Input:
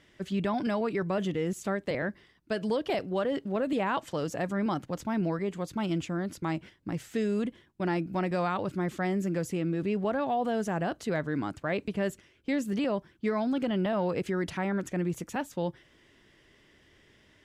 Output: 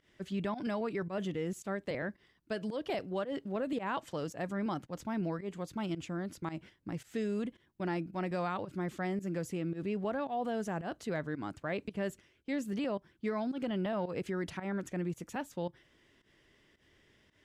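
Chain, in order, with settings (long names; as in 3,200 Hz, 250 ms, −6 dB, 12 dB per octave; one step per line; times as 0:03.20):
fake sidechain pumping 111 BPM, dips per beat 1, −16 dB, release 115 ms
level −5.5 dB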